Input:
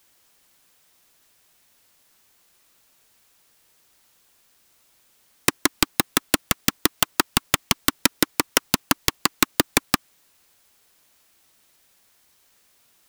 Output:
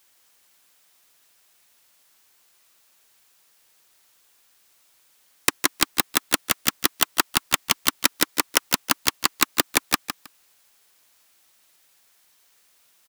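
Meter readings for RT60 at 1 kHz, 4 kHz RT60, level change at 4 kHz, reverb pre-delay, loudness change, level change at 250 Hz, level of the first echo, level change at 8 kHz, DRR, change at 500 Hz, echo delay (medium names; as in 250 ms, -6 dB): no reverb, no reverb, +0.5 dB, no reverb, 0.0 dB, -5.5 dB, -9.0 dB, +0.5 dB, no reverb, -3.5 dB, 158 ms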